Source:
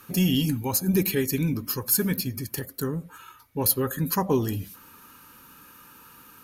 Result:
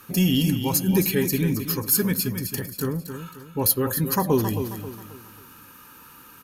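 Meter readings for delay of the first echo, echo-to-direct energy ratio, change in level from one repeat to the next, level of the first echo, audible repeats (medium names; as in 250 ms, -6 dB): 268 ms, -8.5 dB, -8.5 dB, -9.0 dB, 4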